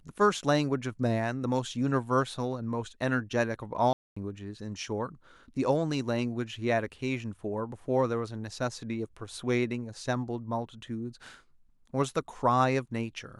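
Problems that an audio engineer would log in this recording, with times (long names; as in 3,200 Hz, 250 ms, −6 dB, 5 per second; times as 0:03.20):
0:03.93–0:04.17: drop-out 235 ms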